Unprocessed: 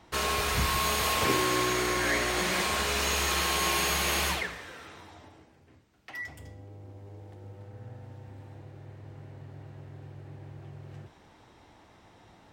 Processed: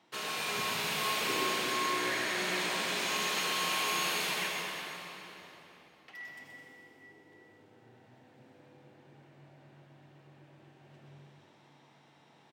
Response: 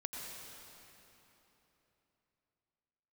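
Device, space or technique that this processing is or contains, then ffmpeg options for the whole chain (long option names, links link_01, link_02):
PA in a hall: -filter_complex "[0:a]highpass=frequency=150:width=0.5412,highpass=frequency=150:width=1.3066,equalizer=frequency=3100:width_type=o:width=1.2:gain=5,aecho=1:1:126:0.473[link_01];[1:a]atrim=start_sample=2205[link_02];[link_01][link_02]afir=irnorm=-1:irlink=0,volume=-7dB"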